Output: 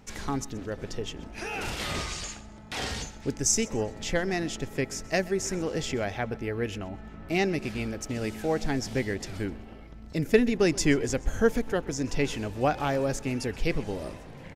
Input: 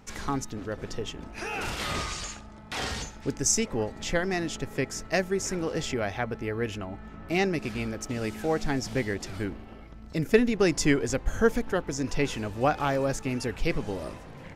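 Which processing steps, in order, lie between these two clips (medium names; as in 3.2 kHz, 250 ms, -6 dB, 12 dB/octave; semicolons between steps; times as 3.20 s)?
peaking EQ 1.2 kHz -4 dB 0.74 oct; feedback delay 128 ms, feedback 37%, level -20.5 dB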